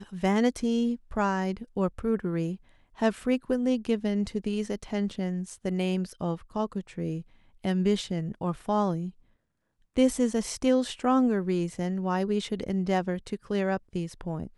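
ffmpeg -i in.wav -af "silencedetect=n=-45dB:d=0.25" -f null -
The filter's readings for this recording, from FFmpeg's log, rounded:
silence_start: 2.56
silence_end: 2.98 | silence_duration: 0.41
silence_start: 7.22
silence_end: 7.64 | silence_duration: 0.42
silence_start: 9.10
silence_end: 9.96 | silence_duration: 0.85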